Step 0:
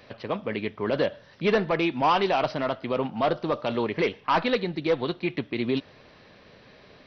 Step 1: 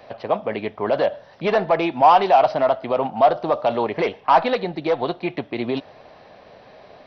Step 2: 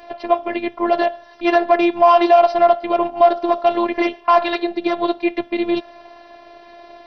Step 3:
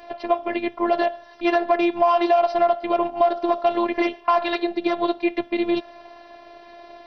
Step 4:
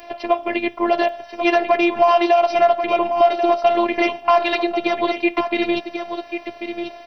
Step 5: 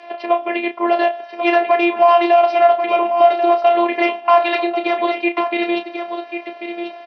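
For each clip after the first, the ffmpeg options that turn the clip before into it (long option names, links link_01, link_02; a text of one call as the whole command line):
ffmpeg -i in.wav -filter_complex "[0:a]equalizer=frequency=720:width_type=o:width=0.97:gain=14.5,acrossover=split=690[link_01][link_02];[link_01]alimiter=limit=-16dB:level=0:latency=1[link_03];[link_03][link_02]amix=inputs=2:normalize=0" out.wav
ffmpeg -i in.wav -af "afftfilt=real='hypot(re,im)*cos(PI*b)':imag='0':win_size=512:overlap=0.75,alimiter=level_in=8.5dB:limit=-1dB:release=50:level=0:latency=1,volume=-1dB" out.wav
ffmpeg -i in.wav -af "acompressor=threshold=-13dB:ratio=3,volume=-2dB" out.wav
ffmpeg -i in.wav -af "aexciter=amount=2:drive=2.9:freq=2200,aecho=1:1:1090:0.376,volume=2.5dB" out.wav
ffmpeg -i in.wav -filter_complex "[0:a]highpass=330,lowpass=3800,asplit=2[link_01][link_02];[link_02]adelay=32,volume=-8.5dB[link_03];[link_01][link_03]amix=inputs=2:normalize=0,volume=1dB" out.wav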